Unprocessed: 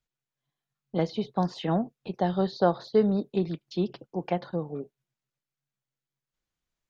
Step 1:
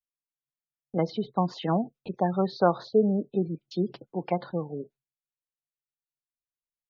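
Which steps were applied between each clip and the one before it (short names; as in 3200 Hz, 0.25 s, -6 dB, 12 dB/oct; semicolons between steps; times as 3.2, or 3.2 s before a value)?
dynamic EQ 1200 Hz, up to +5 dB, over -41 dBFS, Q 1.6; spectral gate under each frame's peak -25 dB strong; gate with hold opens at -50 dBFS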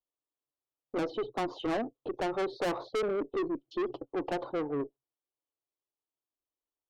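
EQ curve 120 Hz 0 dB, 190 Hz -19 dB, 280 Hz +10 dB, 1200 Hz +3 dB, 2000 Hz -28 dB, 3000 Hz -2 dB, 4600 Hz -11 dB; tube stage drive 28 dB, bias 0.2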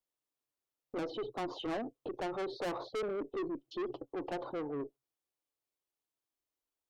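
limiter -34 dBFS, peak gain reduction 7.5 dB; gain +1 dB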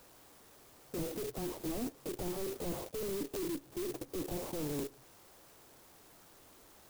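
delta modulation 16 kbps, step -57.5 dBFS; crackling interface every 0.36 s repeat, from 0.46; clock jitter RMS 0.14 ms; gain +5 dB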